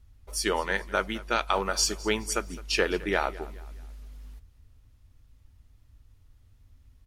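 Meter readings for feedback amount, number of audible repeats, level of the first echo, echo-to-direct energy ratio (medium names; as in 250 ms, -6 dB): 41%, 3, -19.5 dB, -18.5 dB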